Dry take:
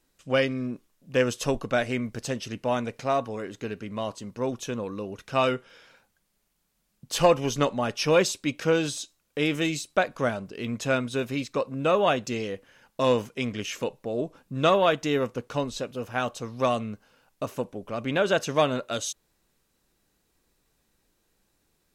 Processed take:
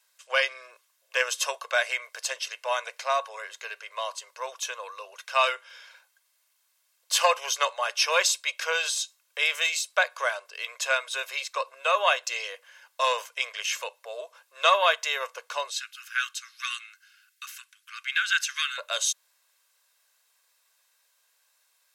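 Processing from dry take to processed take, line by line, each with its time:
15.7–18.78 steep high-pass 1300 Hz 72 dB/oct
whole clip: Bessel high-pass 1100 Hz, order 8; comb 1.9 ms, depth 42%; gain +5.5 dB

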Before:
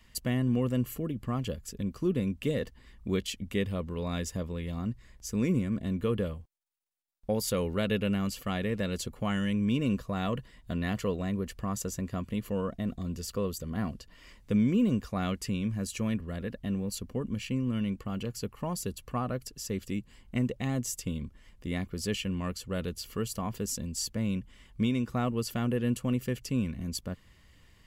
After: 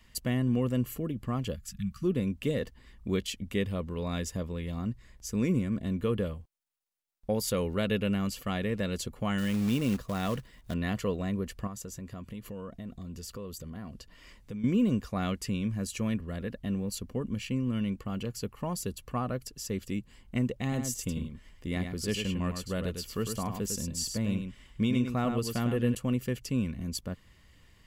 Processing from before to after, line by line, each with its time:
1.56–2.04 spectral delete 230–1100 Hz
9.38–10.74 short-mantissa float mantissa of 2-bit
11.67–14.64 compressor 3:1, threshold -39 dBFS
20.62–25.95 echo 0.102 s -6.5 dB

